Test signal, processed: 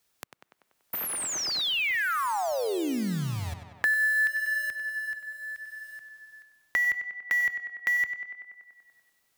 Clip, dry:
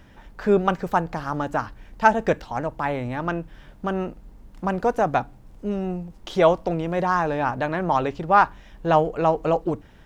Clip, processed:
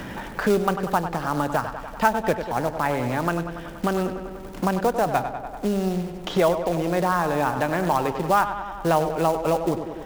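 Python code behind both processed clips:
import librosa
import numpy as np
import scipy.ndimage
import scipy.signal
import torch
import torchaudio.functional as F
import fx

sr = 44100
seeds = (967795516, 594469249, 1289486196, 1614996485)

y = fx.quant_float(x, sr, bits=2)
y = fx.echo_tape(y, sr, ms=96, feedback_pct=61, wet_db=-9.0, lp_hz=3500.0, drive_db=6.0, wow_cents=8)
y = fx.band_squash(y, sr, depth_pct=70)
y = y * librosa.db_to_amplitude(-1.0)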